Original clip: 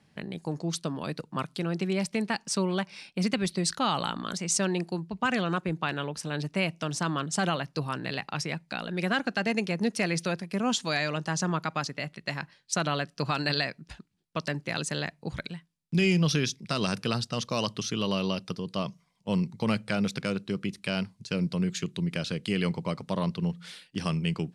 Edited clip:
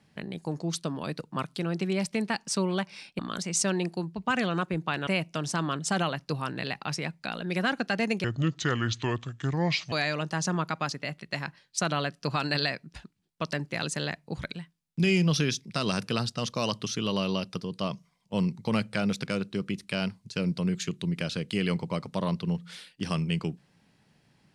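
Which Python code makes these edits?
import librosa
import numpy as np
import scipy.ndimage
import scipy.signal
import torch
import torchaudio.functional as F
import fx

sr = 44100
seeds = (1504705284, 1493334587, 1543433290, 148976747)

y = fx.edit(x, sr, fx.cut(start_s=3.19, length_s=0.95),
    fx.cut(start_s=6.02, length_s=0.52),
    fx.speed_span(start_s=9.71, length_s=1.16, speed=0.69), tone=tone)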